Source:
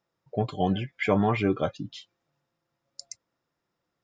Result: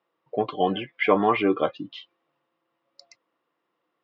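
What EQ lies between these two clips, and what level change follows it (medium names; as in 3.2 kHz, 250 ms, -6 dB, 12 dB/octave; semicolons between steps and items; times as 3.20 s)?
cabinet simulation 230–4100 Hz, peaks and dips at 320 Hz +7 dB, 480 Hz +6 dB, 740 Hz +3 dB, 1.1 kHz +10 dB, 2 kHz +4 dB, 2.9 kHz +7 dB; 0.0 dB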